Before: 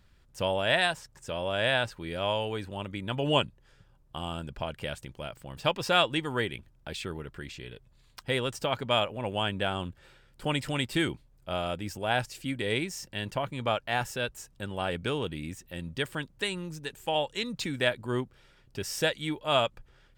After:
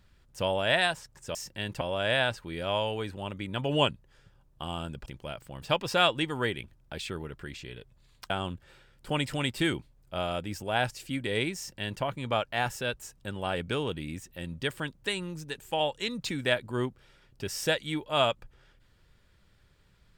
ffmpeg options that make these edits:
ffmpeg -i in.wav -filter_complex "[0:a]asplit=5[link_01][link_02][link_03][link_04][link_05];[link_01]atrim=end=1.352[link_06];[link_02]atrim=start=12.918:end=13.382[link_07];[link_03]atrim=start=1.348:end=4.602[link_08];[link_04]atrim=start=5.008:end=8.252[link_09];[link_05]atrim=start=9.648[link_10];[link_06][link_07]acrossfade=duration=0.004:curve1=hsin:curve2=hsin[link_11];[link_11][link_08]acrossfade=duration=0.004:curve1=hsin:curve2=hsin[link_12];[link_12][link_09]acrossfade=duration=0.004:curve1=hsin:curve2=hsin[link_13];[link_13][link_10]acrossfade=duration=0.004:curve1=hsin:curve2=hsin" out.wav

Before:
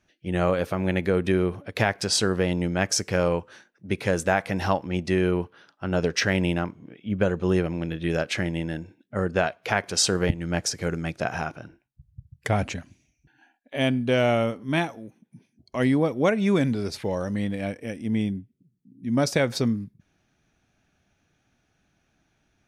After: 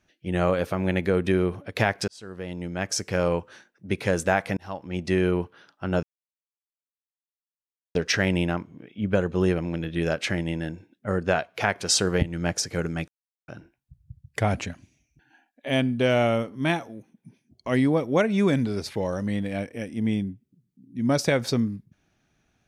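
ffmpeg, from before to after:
ffmpeg -i in.wav -filter_complex "[0:a]asplit=6[link_01][link_02][link_03][link_04][link_05][link_06];[link_01]atrim=end=2.08,asetpts=PTS-STARTPTS,afade=type=out:start_time=2.076:duration=0.004:curve=hsin[link_07];[link_02]atrim=start=2.08:end=4.57,asetpts=PTS-STARTPTS,afade=type=in:duration=1.28,afade=type=out:start_time=2.486:duration=0.004:curve=hsin[link_08];[link_03]atrim=start=4.57:end=6.03,asetpts=PTS-STARTPTS,afade=type=in:duration=0.55,afade=type=out:start_time=1.456:duration=0.004:curve=hsin,apad=pad_dur=1.92[link_09];[link_04]atrim=start=6.03:end=11.16,asetpts=PTS-STARTPTS,afade=type=in:duration=0.004:curve=hsin,afade=type=out:start_time=5.126:duration=0.004:curve=hsin[link_10];[link_05]atrim=start=11.16:end=11.56,asetpts=PTS-STARTPTS,volume=0[link_11];[link_06]atrim=start=11.56,asetpts=PTS-STARTPTS,afade=type=in:duration=0.004:curve=hsin[link_12];[link_07][link_08][link_09][link_10][link_11][link_12]concat=n=6:v=0:a=1" out.wav

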